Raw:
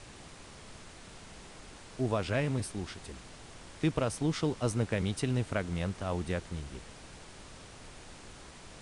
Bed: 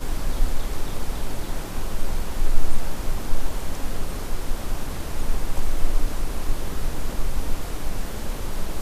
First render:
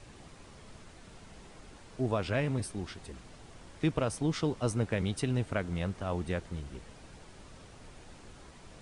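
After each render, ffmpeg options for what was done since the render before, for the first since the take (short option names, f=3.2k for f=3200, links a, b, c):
-af "afftdn=nr=6:nf=-51"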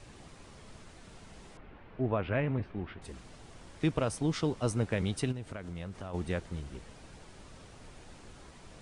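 -filter_complex "[0:a]asettb=1/sr,asplit=3[a][b][c];[a]atrim=end=1.574[d];[b]atrim=start=1.57:end=3.02,asetpts=PTS-STARTPTS,afade=t=in:d=0.004:c=qsin,afade=t=out:st=1.446:d=0.004:c=qsin,lowpass=f=2.7k:w=0.5412,lowpass=f=2.7k:w=1.3066[e];[c]atrim=start=3.016[f];[d][e]acrossfade=d=0.004:c1=hsin:c2=qsin[g];[g][f]acrossfade=d=0.004:c1=qsin:c2=hsin,asplit=3[h][i][j];[h]afade=t=out:st=5.31:d=0.02[k];[i]acompressor=threshold=-37dB:ratio=6:attack=3.2:release=140:knee=1:detection=peak,afade=t=in:st=5.31:d=0.02,afade=t=out:st=6.13:d=0.02[l];[j]afade=t=in:st=6.13:d=0.02[m];[k][l][m]amix=inputs=3:normalize=0"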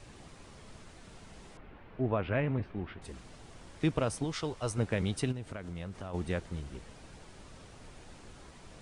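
-filter_complex "[0:a]asettb=1/sr,asplit=3[a][b][c];[a]atrim=end=4.244[d];[b]atrim=start=4.24:end=4.78,asetpts=PTS-STARTPTS,afade=t=in:d=0.004:c=qsin,afade=t=out:st=0.536:d=0.004:c=qsin,equalizer=f=220:t=o:w=1.5:g=-10[e];[c]atrim=start=4.776[f];[d][e]acrossfade=d=0.004:c1=hsin:c2=qsin[g];[g][f]acrossfade=d=0.004:c1=qsin:c2=hsin"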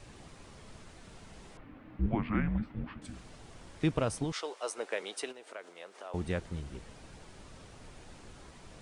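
-filter_complex "[0:a]asettb=1/sr,asplit=3[a][b][c];[a]atrim=end=1.644[d];[b]atrim=start=1.64:end=3.13,asetpts=PTS-STARTPTS,afade=t=in:d=0.004:c=qsin,afade=t=out:st=1.486:d=0.004:c=qsin,afreqshift=-320[e];[c]atrim=start=3.126[f];[d][e]acrossfade=d=0.004:c1=hsin:c2=qsin[g];[g][f]acrossfade=d=0.004:c1=qsin:c2=hsin,asettb=1/sr,asplit=3[h][i][j];[h]atrim=end=4.324[k];[i]atrim=start=4.32:end=6.14,asetpts=PTS-STARTPTS,afade=t=in:d=0.004:c=qsin,afade=t=out:st=1.816:d=0.004:c=qsin,highpass=f=410:w=0.5412,highpass=f=410:w=1.3066[l];[j]atrim=start=6.136[m];[k][l]acrossfade=d=0.004:c1=hsin:c2=qsin[n];[n][m]acrossfade=d=0.004:c1=qsin:c2=hsin"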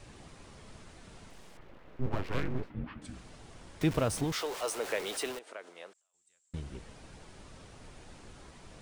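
-filter_complex "[0:a]asettb=1/sr,asplit=3[a][b][c];[a]atrim=end=1.304[d];[b]atrim=start=1.3:end=2.7,asetpts=PTS-STARTPTS,afade=t=in:d=0.004:c=qsin,afade=t=out:st=1.396:d=0.004:c=qsin,aeval=exprs='abs(val(0))':c=same[e];[c]atrim=start=2.696[f];[d][e]acrossfade=d=0.004:c1=hsin:c2=qsin[g];[g][f]acrossfade=d=0.004:c1=qsin:c2=hsin,asettb=1/sr,asplit=3[h][i][j];[h]atrim=end=3.814[k];[i]atrim=start=3.81:end=5.39,asetpts=PTS-STARTPTS,afade=t=in:d=0.004:c=qsin,afade=t=out:st=1.576:d=0.004:c=qsin,aeval=exprs='val(0)+0.5*0.0141*sgn(val(0))':c=same[l];[j]atrim=start=5.386[m];[k][l]acrossfade=d=0.004:c1=hsin:c2=qsin[n];[n][m]acrossfade=d=0.004:c1=qsin:c2=hsin,asettb=1/sr,asplit=3[o][p][q];[o]atrim=end=5.934[r];[p]atrim=start=5.93:end=6.54,asetpts=PTS-STARTPTS,afade=t=in:d=0.004:c=qsin,afade=t=out:st=0.606:d=0.004:c=qsin,bandpass=f=7.5k:t=q:w=17[s];[q]atrim=start=6.536[t];[r][s]acrossfade=d=0.004:c1=hsin:c2=qsin[u];[u][t]acrossfade=d=0.004:c1=qsin:c2=hsin"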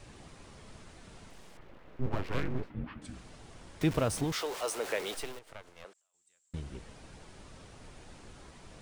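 -filter_complex "[0:a]asettb=1/sr,asplit=3[a][b][c];[a]atrim=end=5.144[d];[b]atrim=start=5.14:end=5.85,asetpts=PTS-STARTPTS,afade=t=in:d=0.004:c=qsin,afade=t=out:st=0.706:d=0.004:c=qsin,aeval=exprs='max(val(0),0)':c=same[e];[c]atrim=start=5.846[f];[d][e]acrossfade=d=0.004:c1=hsin:c2=qsin[g];[g][f]acrossfade=d=0.004:c1=qsin:c2=hsin"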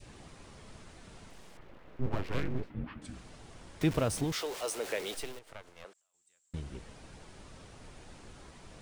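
-af "adynamicequalizer=threshold=0.00316:dfrequency=1100:dqfactor=0.96:tfrequency=1100:tqfactor=0.96:attack=5:release=100:ratio=0.375:range=2.5:mode=cutabove:tftype=bell"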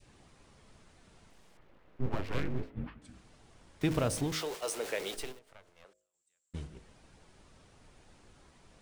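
-af "agate=range=-8dB:threshold=-40dB:ratio=16:detection=peak,bandreject=f=52.58:t=h:w=4,bandreject=f=105.16:t=h:w=4,bandreject=f=157.74:t=h:w=4,bandreject=f=210.32:t=h:w=4,bandreject=f=262.9:t=h:w=4,bandreject=f=315.48:t=h:w=4,bandreject=f=368.06:t=h:w=4,bandreject=f=420.64:t=h:w=4,bandreject=f=473.22:t=h:w=4,bandreject=f=525.8:t=h:w=4,bandreject=f=578.38:t=h:w=4,bandreject=f=630.96:t=h:w=4,bandreject=f=683.54:t=h:w=4"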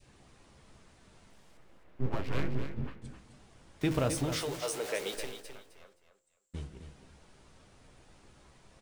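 -filter_complex "[0:a]asplit=2[a][b];[b]adelay=15,volume=-11dB[c];[a][c]amix=inputs=2:normalize=0,aecho=1:1:261|522|783:0.355|0.0781|0.0172"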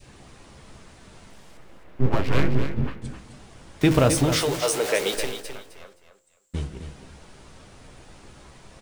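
-af "volume=11.5dB"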